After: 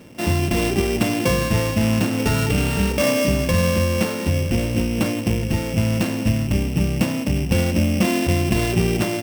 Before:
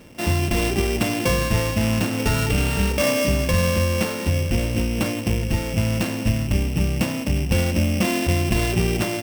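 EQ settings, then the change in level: high-pass 190 Hz 6 dB/octave; bass shelf 310 Hz +8.5 dB; 0.0 dB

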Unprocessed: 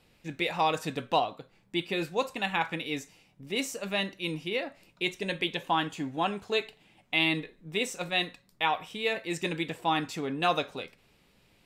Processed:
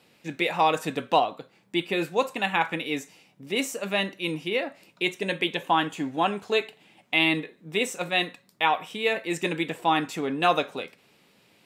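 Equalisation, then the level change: high-pass 170 Hz 12 dB/octave; dynamic bell 4.8 kHz, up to -6 dB, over -50 dBFS, Q 1.7; +5.0 dB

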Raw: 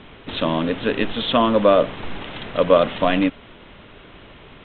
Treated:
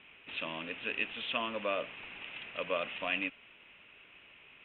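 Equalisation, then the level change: band-pass filter 2.6 kHz, Q 5.8; distance through air 160 m; tilt EQ -3.5 dB/octave; +5.0 dB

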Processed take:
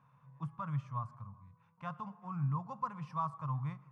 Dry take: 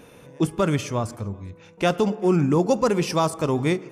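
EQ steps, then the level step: two resonant band-passes 380 Hz, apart 3 oct; -5.5 dB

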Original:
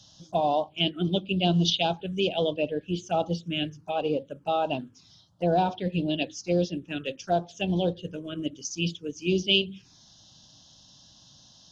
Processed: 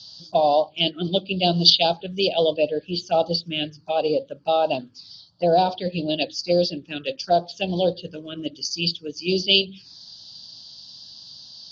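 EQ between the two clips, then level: dynamic bell 580 Hz, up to +8 dB, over -39 dBFS, Q 1.4; resonant low-pass 4.6 kHz, resonance Q 15; bass shelf 69 Hz -6 dB; 0.0 dB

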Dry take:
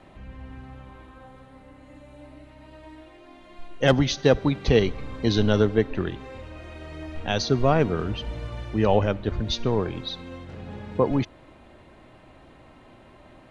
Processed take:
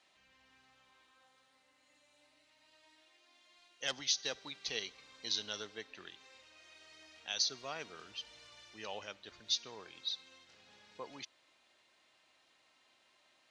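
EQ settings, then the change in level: band-pass filter 5.6 kHz, Q 1.7; 0.0 dB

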